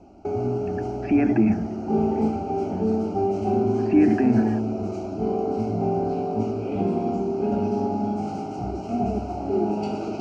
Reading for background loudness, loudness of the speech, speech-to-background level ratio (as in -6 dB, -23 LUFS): -25.5 LUFS, -21.5 LUFS, 4.0 dB